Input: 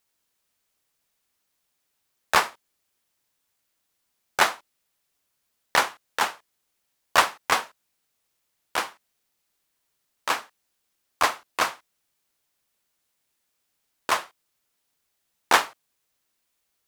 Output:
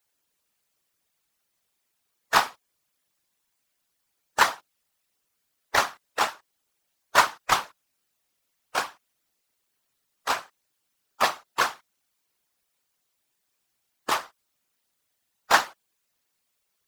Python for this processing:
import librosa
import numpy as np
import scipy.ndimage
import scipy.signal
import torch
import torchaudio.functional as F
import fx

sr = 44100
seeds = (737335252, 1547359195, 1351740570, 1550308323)

y = fx.spec_quant(x, sr, step_db=15)
y = fx.whisperise(y, sr, seeds[0])